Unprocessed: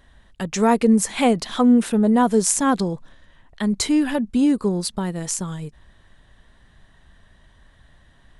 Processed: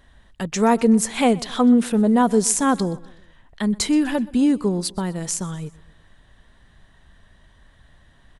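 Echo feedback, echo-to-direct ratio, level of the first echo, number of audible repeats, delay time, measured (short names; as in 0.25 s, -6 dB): 48%, -21.0 dB, -22.0 dB, 3, 0.125 s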